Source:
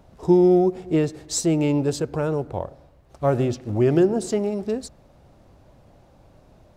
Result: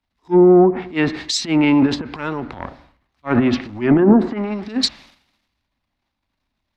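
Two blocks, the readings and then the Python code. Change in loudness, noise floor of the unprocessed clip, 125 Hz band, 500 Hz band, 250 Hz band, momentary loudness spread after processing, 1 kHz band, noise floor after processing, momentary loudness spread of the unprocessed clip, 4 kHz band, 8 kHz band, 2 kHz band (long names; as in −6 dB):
+5.0 dB, −54 dBFS, +0.5 dB, +3.0 dB, +6.5 dB, 16 LU, +6.5 dB, −77 dBFS, 11 LU, +13.0 dB, −1.0 dB, +12.0 dB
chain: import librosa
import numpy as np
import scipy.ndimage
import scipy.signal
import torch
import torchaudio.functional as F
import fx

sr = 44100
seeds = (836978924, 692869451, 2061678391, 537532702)

y = fx.transient(x, sr, attack_db=-11, sustain_db=9)
y = fx.high_shelf(y, sr, hz=2200.0, db=8.5)
y = fx.env_lowpass_down(y, sr, base_hz=870.0, full_db=-13.5)
y = fx.graphic_eq(y, sr, hz=(125, 250, 500, 1000, 2000, 4000, 8000), db=(-6, 12, -6, 10, 12, 7, -7))
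y = fx.band_widen(y, sr, depth_pct=100)
y = F.gain(torch.from_numpy(y), -1.0).numpy()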